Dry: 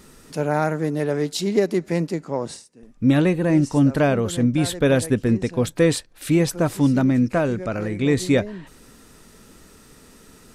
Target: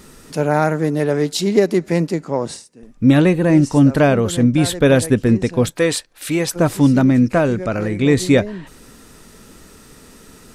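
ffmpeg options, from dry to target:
-filter_complex "[0:a]asettb=1/sr,asplit=3[a][b][c];[a]atrim=end=5.704[d];[b]atrim=start=5.7:end=6.56,asetpts=PTS-STARTPTS,afade=t=in:d=0.004:c=qsin,afade=t=out:st=0.856:d=0.004:c=qsin,lowshelf=f=340:g=-11.5[e];[c]atrim=start=6.556[f];[d][e]acrossfade=d=0.004:c1=hsin:c2=qsin[g];[g][f]acrossfade=d=0.004:c1=qsin:c2=hsin,volume=5dB"

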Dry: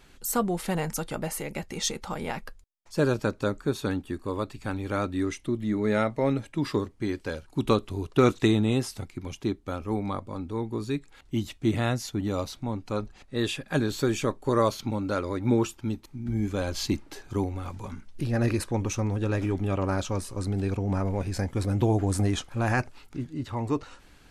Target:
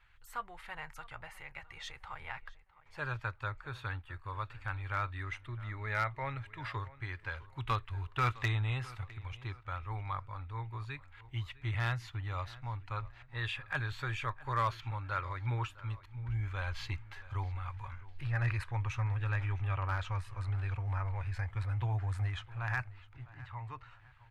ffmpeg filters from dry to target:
-filter_complex "[0:a]firequalizer=gain_entry='entry(120,0);entry(180,-27);entry(940,0);entry(1900,4);entry(5600,-17);entry(11000,-19)':delay=0.05:min_phase=1,dynaudnorm=f=300:g=21:m=5.5dB,asoftclip=type=hard:threshold=-14.5dB,asplit=2[a][b];[b]adelay=658,lowpass=f=3.8k:p=1,volume=-19dB,asplit=2[c][d];[d]adelay=658,lowpass=f=3.8k:p=1,volume=0.38,asplit=2[e][f];[f]adelay=658,lowpass=f=3.8k:p=1,volume=0.38[g];[a][c][e][g]amix=inputs=4:normalize=0,volume=-9dB"

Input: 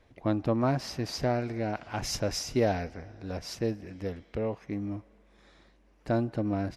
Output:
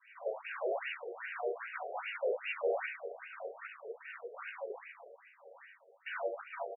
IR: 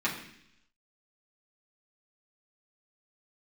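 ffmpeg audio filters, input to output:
-filter_complex "[0:a]acrossover=split=580[a][b];[a]aeval=exprs='val(0)*(1-0.7/2+0.7/2*cos(2*PI*3*n/s))':c=same[c];[b]aeval=exprs='val(0)*(1-0.7/2-0.7/2*cos(2*PI*3*n/s))':c=same[d];[c][d]amix=inputs=2:normalize=0,acompressor=threshold=-46dB:ratio=1.5,aexciter=amount=6.2:drive=8.1:freq=2.3k,acrossover=split=540 2500:gain=0.1 1 0.0631[e][f][g];[e][f][g]amix=inputs=3:normalize=0,aecho=1:1:78:0.251[h];[1:a]atrim=start_sample=2205,asetrate=70560,aresample=44100[i];[h][i]afir=irnorm=-1:irlink=0,asplit=3[j][k][l];[k]asetrate=22050,aresample=44100,atempo=2,volume=-13dB[m];[l]asetrate=37084,aresample=44100,atempo=1.18921,volume=-7dB[n];[j][m][n]amix=inputs=3:normalize=0,equalizer=f=340:w=0.7:g=11,asoftclip=type=tanh:threshold=-34.5dB,afftfilt=real='re*between(b*sr/1024,520*pow(2100/520,0.5+0.5*sin(2*PI*2.5*pts/sr))/1.41,520*pow(2100/520,0.5+0.5*sin(2*PI*2.5*pts/sr))*1.41)':imag='im*between(b*sr/1024,520*pow(2100/520,0.5+0.5*sin(2*PI*2.5*pts/sr))/1.41,520*pow(2100/520,0.5+0.5*sin(2*PI*2.5*pts/sr))*1.41)':win_size=1024:overlap=0.75,volume=7.5dB"

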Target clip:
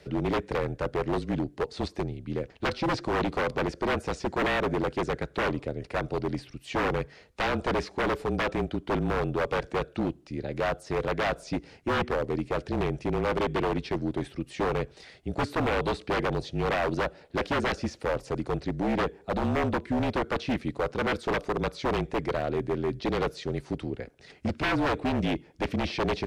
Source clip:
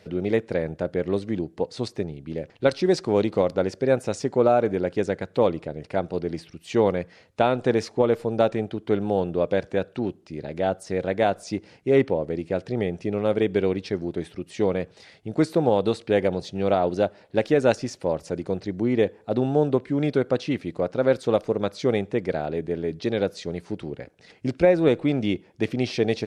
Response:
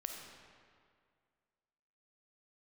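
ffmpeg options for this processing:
-filter_complex "[0:a]afreqshift=-33,aeval=exprs='0.0944*(abs(mod(val(0)/0.0944+3,4)-2)-1)':c=same,acrossover=split=4400[a][b];[b]acompressor=threshold=-49dB:ratio=4:attack=1:release=60[c];[a][c]amix=inputs=2:normalize=0"

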